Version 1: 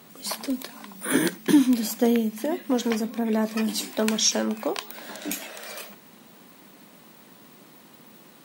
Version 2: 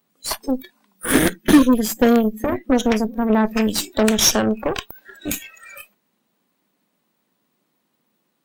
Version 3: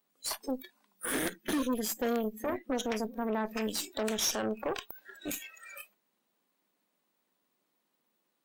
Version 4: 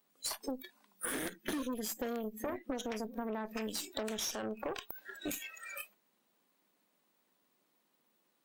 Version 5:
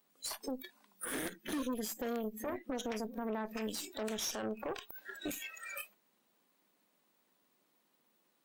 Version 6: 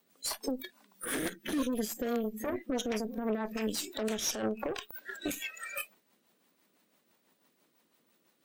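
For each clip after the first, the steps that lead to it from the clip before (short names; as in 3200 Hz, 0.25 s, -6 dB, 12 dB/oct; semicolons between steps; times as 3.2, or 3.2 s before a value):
spectral noise reduction 25 dB; added harmonics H 8 -16 dB, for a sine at -8 dBFS; gain +5.5 dB
limiter -12.5 dBFS, peak gain reduction 11 dB; tone controls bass -9 dB, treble +1 dB; gain -8 dB
compressor 6:1, threshold -37 dBFS, peak gain reduction 10.5 dB; gain +2.5 dB
limiter -28.5 dBFS, peak gain reduction 8 dB; gain +1 dB
rotary speaker horn 6 Hz; gain +7 dB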